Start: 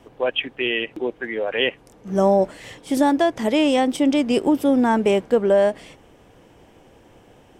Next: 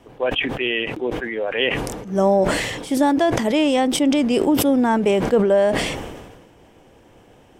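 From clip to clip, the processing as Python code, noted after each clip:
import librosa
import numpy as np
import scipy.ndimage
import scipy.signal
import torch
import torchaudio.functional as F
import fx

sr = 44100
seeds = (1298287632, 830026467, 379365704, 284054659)

y = fx.sustainer(x, sr, db_per_s=41.0)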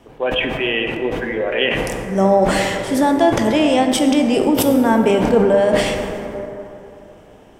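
y = fx.rev_plate(x, sr, seeds[0], rt60_s=3.1, hf_ratio=0.35, predelay_ms=0, drr_db=3.5)
y = y * librosa.db_to_amplitude(1.5)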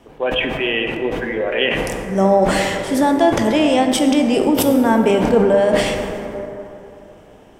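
y = fx.hum_notches(x, sr, base_hz=60, count=2)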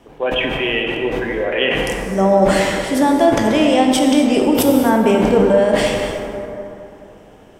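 y = fx.rev_gated(x, sr, seeds[1], gate_ms=290, shape='flat', drr_db=5.5)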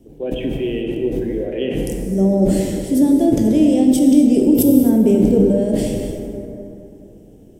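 y = fx.curve_eq(x, sr, hz=(340.0, 680.0, 1100.0, 12000.0), db=(0, -14, -29, -1))
y = y * librosa.db_to_amplitude(3.0)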